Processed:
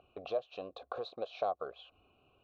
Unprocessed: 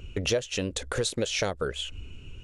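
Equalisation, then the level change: vowel filter a; resonant low-pass 4 kHz, resonance Q 7.5; resonant high shelf 1.6 kHz -12.5 dB, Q 1.5; +3.0 dB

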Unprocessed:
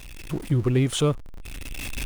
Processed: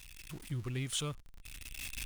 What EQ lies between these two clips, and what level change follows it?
amplifier tone stack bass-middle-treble 5-5-5; 0.0 dB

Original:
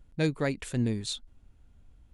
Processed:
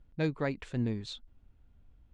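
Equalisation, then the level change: treble shelf 8 kHz +6.5 dB; dynamic bell 1 kHz, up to +4 dB, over -45 dBFS, Q 1.4; distance through air 170 m; -3.5 dB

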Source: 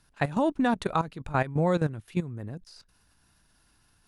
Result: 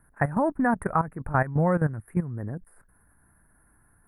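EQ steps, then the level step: elliptic band-stop 1.8–9.4 kHz, stop band 40 dB; dynamic bell 360 Hz, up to -6 dB, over -38 dBFS, Q 1.1; +4.5 dB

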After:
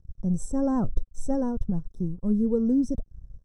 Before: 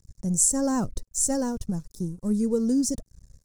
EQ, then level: boxcar filter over 19 samples; bass shelf 64 Hz +11 dB; 0.0 dB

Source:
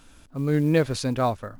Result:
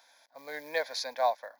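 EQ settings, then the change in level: high-pass 510 Hz 24 dB/octave; static phaser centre 1.9 kHz, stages 8; 0.0 dB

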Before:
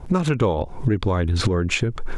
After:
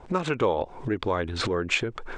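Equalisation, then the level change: elliptic low-pass 8.7 kHz, stop band 40 dB; tone controls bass -13 dB, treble -6 dB; 0.0 dB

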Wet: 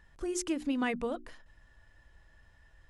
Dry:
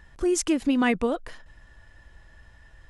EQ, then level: hum notches 60/120/180/240/300/360 Hz; -8.5 dB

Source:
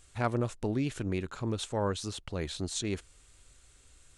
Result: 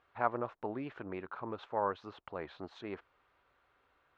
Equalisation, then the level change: band-pass filter 1 kHz, Q 1.4; distance through air 290 m; +4.5 dB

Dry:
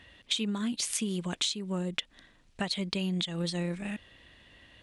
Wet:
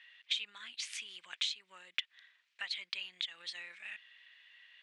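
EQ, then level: ladder band-pass 2.6 kHz, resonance 30%; +8.0 dB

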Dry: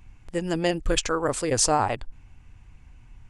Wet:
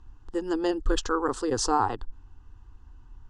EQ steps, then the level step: low-pass 4.5 kHz 12 dB/octave; static phaser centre 610 Hz, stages 6; +1.5 dB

